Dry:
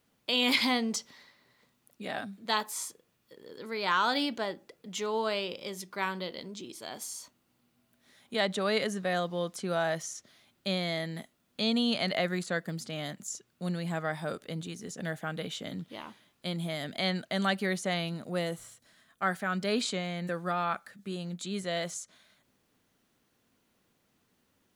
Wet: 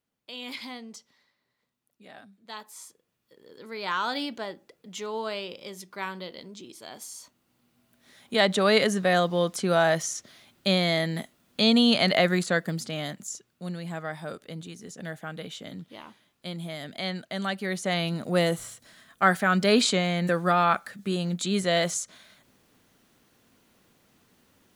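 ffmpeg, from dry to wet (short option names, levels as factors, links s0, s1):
-af "volume=8.41,afade=t=in:st=2.49:d=1.32:silence=0.298538,afade=t=in:st=7.11:d=1.54:silence=0.334965,afade=t=out:st=12.33:d=1.3:silence=0.334965,afade=t=in:st=17.61:d=0.81:silence=0.298538"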